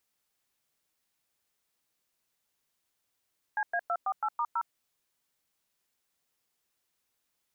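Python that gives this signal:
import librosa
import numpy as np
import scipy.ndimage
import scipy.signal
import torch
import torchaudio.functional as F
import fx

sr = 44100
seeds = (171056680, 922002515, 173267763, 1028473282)

y = fx.dtmf(sr, digits='CA248*0', tone_ms=60, gap_ms=104, level_db=-29.5)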